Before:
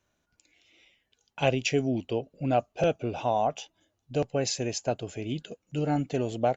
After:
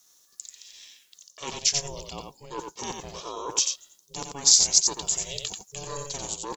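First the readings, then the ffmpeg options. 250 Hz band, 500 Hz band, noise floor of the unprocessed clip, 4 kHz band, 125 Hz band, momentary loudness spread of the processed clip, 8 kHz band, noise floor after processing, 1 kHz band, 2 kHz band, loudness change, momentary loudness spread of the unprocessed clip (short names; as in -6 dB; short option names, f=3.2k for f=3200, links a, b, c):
-13.0 dB, -11.5 dB, -78 dBFS, +12.0 dB, -12.0 dB, 22 LU, n/a, -62 dBFS, -6.5 dB, -5.0 dB, +6.0 dB, 9 LU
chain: -af "lowshelf=f=600:t=q:w=1.5:g=-8.5,areverse,acompressor=threshold=-37dB:ratio=5,areverse,aexciter=amount=10.1:drive=5.6:freq=3.8k,aeval=exprs='val(0)*sin(2*PI*280*n/s)':c=same,aecho=1:1:89:0.562,volume=5.5dB"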